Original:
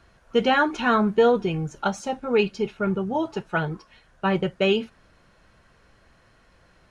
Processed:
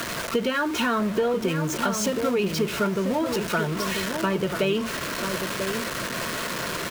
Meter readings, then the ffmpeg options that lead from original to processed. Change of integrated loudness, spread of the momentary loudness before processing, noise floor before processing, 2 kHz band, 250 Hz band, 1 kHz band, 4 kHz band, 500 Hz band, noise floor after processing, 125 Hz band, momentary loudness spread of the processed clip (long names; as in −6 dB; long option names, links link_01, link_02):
−2.0 dB, 9 LU, −59 dBFS, +0.5 dB, 0.0 dB, −2.0 dB, +3.5 dB, −2.0 dB, −32 dBFS, +0.5 dB, 4 LU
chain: -filter_complex "[0:a]aeval=exprs='val(0)+0.5*0.0422*sgn(val(0))':channel_layout=same,highpass=frequency=54:width=0.5412,highpass=frequency=54:width=1.3066,asplit=2[link_01][link_02];[link_02]alimiter=limit=-15dB:level=0:latency=1,volume=-3dB[link_03];[link_01][link_03]amix=inputs=2:normalize=0,acompressor=threshold=-21dB:ratio=6,acrossover=split=130|980[link_04][link_05][link_06];[link_04]aeval=exprs='(mod(94.4*val(0)+1,2)-1)/94.4':channel_layout=same[link_07];[link_07][link_05][link_06]amix=inputs=3:normalize=0,asuperstop=centerf=800:order=4:qfactor=5.9,asplit=2[link_08][link_09];[link_09]adelay=991.3,volume=-6dB,highshelf=frequency=4000:gain=-22.3[link_10];[link_08][link_10]amix=inputs=2:normalize=0"